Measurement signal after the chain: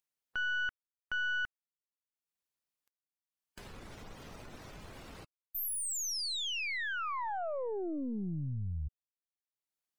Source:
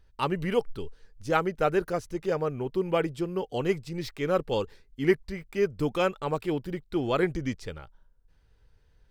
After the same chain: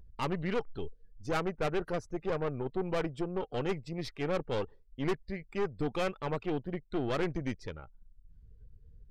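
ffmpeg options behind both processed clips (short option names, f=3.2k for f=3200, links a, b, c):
-af "acompressor=mode=upward:threshold=-37dB:ratio=2.5,afftdn=nr=26:nf=-50,aeval=exprs='(tanh(22.4*val(0)+0.7)-tanh(0.7))/22.4':c=same"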